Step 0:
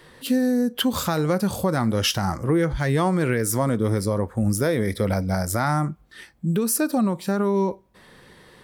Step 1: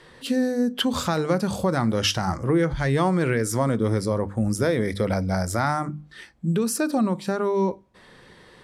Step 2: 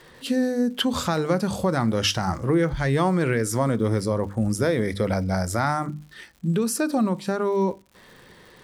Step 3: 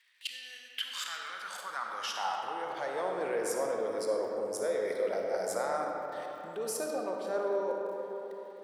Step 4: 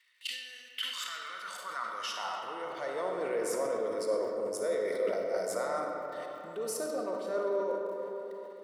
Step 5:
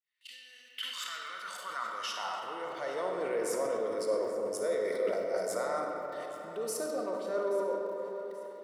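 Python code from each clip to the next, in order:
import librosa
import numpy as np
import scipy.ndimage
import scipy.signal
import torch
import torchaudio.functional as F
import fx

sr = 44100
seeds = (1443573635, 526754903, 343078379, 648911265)

y1 = scipy.signal.sosfilt(scipy.signal.butter(2, 8300.0, 'lowpass', fs=sr, output='sos'), x)
y1 = fx.hum_notches(y1, sr, base_hz=50, count=6)
y2 = fx.dmg_crackle(y1, sr, seeds[0], per_s=210.0, level_db=-42.0)
y3 = fx.level_steps(y2, sr, step_db=16)
y3 = fx.filter_sweep_highpass(y3, sr, from_hz=2300.0, to_hz=510.0, start_s=0.69, end_s=3.06, q=2.8)
y3 = fx.rev_freeverb(y3, sr, rt60_s=3.9, hf_ratio=0.45, predelay_ms=15, drr_db=0.0)
y3 = F.gain(torch.from_numpy(y3), -5.0).numpy()
y4 = fx.notch_comb(y3, sr, f0_hz=820.0)
y4 = fx.sustainer(y4, sr, db_per_s=55.0)
y5 = fx.fade_in_head(y4, sr, length_s=1.13)
y5 = fx.echo_feedback(y5, sr, ms=829, feedback_pct=35, wet_db=-19)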